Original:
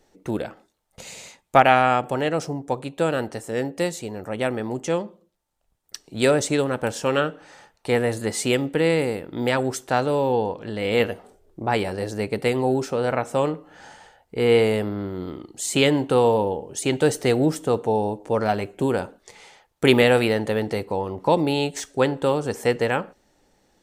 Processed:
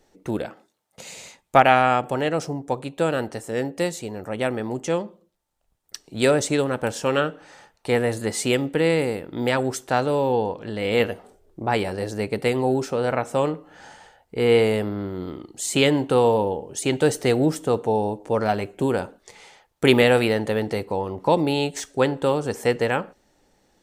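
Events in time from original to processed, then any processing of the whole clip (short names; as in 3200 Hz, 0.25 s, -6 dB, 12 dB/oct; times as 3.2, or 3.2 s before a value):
0.46–1.18 HPF 130 Hz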